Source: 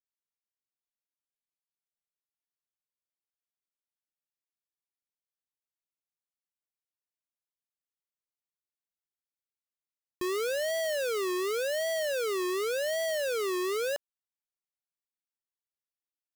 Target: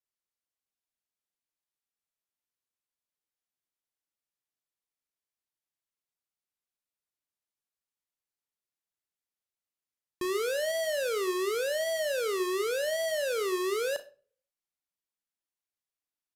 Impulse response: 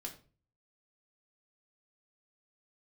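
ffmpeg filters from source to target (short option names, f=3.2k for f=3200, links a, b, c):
-filter_complex "[0:a]asplit=2[a][b];[b]highshelf=f=9.9k:g=6[c];[1:a]atrim=start_sample=2205,adelay=35[d];[c][d]afir=irnorm=-1:irlink=0,volume=-8.5dB[e];[a][e]amix=inputs=2:normalize=0,aresample=32000,aresample=44100"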